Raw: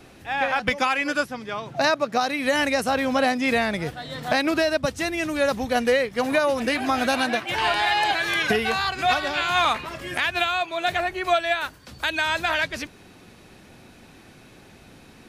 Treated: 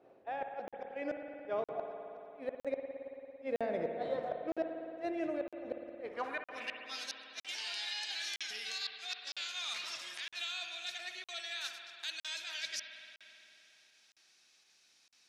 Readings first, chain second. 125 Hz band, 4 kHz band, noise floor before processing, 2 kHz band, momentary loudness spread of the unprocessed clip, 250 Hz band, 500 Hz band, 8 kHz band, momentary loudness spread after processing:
-23.5 dB, -12.0 dB, -49 dBFS, -20.5 dB, 7 LU, -18.0 dB, -15.0 dB, -10.5 dB, 8 LU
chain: notches 50/100/150/200/250 Hz; gate -40 dBFS, range -14 dB; dynamic EQ 1000 Hz, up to -7 dB, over -37 dBFS, Q 1.3; reverse; compressor 8:1, threshold -34 dBFS, peak gain reduction 16 dB; reverse; band-pass sweep 560 Hz -> 5500 Hz, 5.87–7.07; in parallel at +1 dB: pump 82 bpm, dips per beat 1, -15 dB, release 81 ms; on the sum: flipped gate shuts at -28 dBFS, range -42 dB; spring tank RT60 3.1 s, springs 56 ms, chirp 55 ms, DRR 4 dB; crackling interface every 0.96 s, samples 2048, zero, from 0.68; gain +2.5 dB

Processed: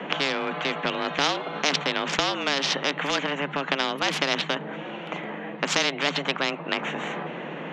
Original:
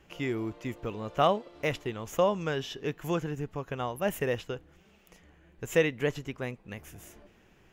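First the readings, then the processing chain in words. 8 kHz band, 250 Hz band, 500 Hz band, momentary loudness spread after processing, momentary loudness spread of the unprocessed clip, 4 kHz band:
+12.0 dB, +3.5 dB, +0.5 dB, 10 LU, 15 LU, +16.5 dB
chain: Wiener smoothing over 9 samples; frequency shift +140 Hz; Chebyshev band-pass 150–4900 Hz, order 3; dynamic EQ 1200 Hz, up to -7 dB, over -41 dBFS, Q 0.85; spectral compressor 4:1; gain +8.5 dB

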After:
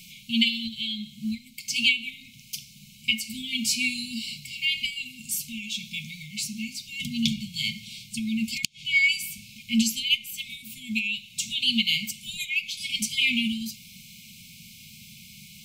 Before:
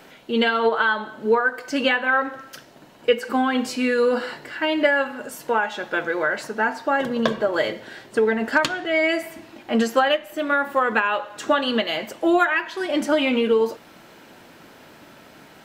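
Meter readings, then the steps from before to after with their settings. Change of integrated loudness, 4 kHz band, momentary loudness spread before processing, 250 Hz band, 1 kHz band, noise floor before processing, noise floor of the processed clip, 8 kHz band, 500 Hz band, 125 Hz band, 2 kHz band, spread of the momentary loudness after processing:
-4.5 dB, +5.0 dB, 8 LU, -5.5 dB, under -40 dB, -48 dBFS, -50 dBFS, +9.0 dB, under -40 dB, +1.5 dB, -5.5 dB, 22 LU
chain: brick-wall FIR band-stop 230–2100 Hz; tone controls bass +1 dB, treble +7 dB; flipped gate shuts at -10 dBFS, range -30 dB; gain +3 dB

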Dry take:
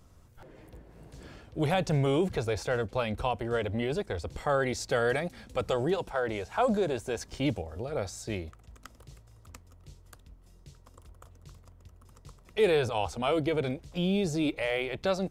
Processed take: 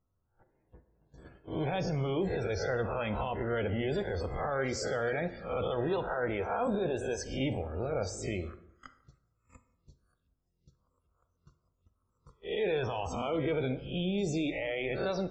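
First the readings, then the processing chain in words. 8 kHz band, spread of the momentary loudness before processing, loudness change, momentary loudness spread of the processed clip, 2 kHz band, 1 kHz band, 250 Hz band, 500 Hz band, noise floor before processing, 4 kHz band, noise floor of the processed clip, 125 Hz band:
-2.5 dB, 10 LU, -3.0 dB, 4 LU, -3.0 dB, -3.5 dB, -3.0 dB, -3.0 dB, -56 dBFS, -4.5 dB, -78 dBFS, -2.5 dB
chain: spectral swells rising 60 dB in 0.46 s; limiter -24 dBFS, peak gain reduction 11 dB; loudest bins only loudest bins 64; gate -44 dBFS, range -24 dB; plate-style reverb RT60 0.76 s, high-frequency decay 0.6×, DRR 9.5 dB

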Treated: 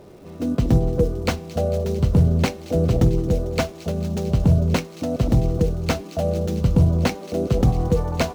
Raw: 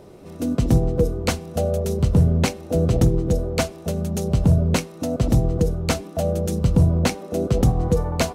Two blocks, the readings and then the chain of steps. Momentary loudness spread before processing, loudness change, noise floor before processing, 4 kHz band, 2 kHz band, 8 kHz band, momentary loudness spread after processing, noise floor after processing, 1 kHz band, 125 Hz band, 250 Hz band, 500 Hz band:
7 LU, 0.0 dB, -40 dBFS, -1.5 dB, -0.5 dB, -5.5 dB, 7 LU, -40 dBFS, 0.0 dB, 0.0 dB, 0.0 dB, 0.0 dB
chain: median filter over 5 samples; crackle 460/s -48 dBFS; thin delay 0.224 s, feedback 83%, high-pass 3200 Hz, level -13.5 dB

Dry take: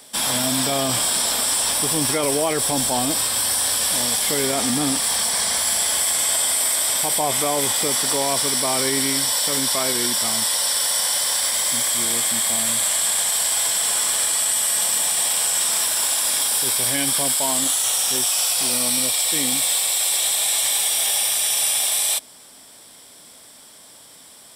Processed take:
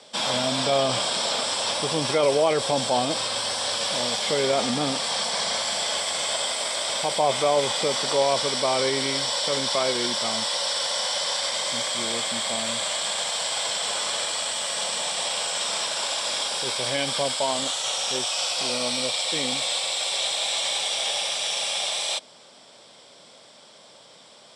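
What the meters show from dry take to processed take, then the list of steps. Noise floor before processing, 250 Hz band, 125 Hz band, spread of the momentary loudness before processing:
-46 dBFS, -5.0 dB, -3.0 dB, 2 LU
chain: speaker cabinet 130–6200 Hz, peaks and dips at 280 Hz -7 dB, 550 Hz +6 dB, 1800 Hz -5 dB, 5600 Hz -3 dB

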